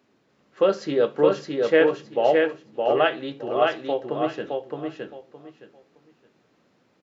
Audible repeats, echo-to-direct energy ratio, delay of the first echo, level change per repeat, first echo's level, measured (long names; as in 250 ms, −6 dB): 3, −3.0 dB, 616 ms, −13.0 dB, −3.0 dB